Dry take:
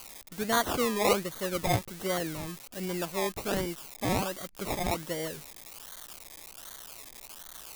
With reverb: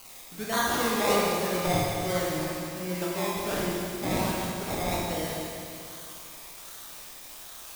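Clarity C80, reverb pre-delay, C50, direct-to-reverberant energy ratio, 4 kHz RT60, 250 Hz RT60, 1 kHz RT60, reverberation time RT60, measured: -0.5 dB, 22 ms, -2.5 dB, -5.0 dB, 2.6 s, 2.6 s, 2.6 s, 2.6 s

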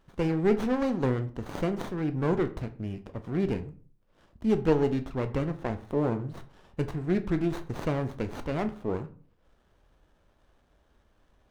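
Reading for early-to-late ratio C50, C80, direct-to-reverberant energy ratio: 14.5 dB, 19.5 dB, 9.0 dB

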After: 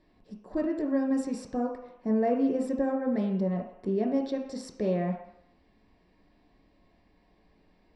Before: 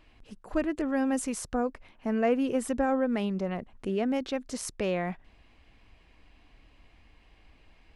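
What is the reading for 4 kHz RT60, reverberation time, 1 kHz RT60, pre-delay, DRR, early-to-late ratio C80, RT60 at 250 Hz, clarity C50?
0.70 s, 0.75 s, 0.80 s, 3 ms, 0.5 dB, 9.0 dB, 0.55 s, 6.0 dB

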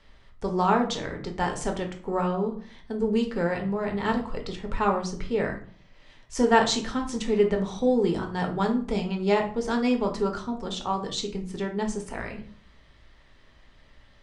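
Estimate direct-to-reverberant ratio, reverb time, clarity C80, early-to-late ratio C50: 2.0 dB, 0.45 s, 15.0 dB, 10.0 dB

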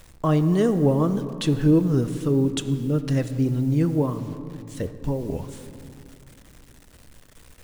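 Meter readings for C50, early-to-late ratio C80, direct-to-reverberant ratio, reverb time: 11.5 dB, 12.5 dB, 10.0 dB, 2.7 s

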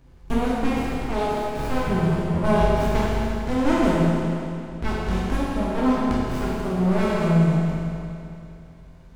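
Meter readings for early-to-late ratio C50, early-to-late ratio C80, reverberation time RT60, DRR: -3.5 dB, -2.0 dB, 2.7 s, -8.0 dB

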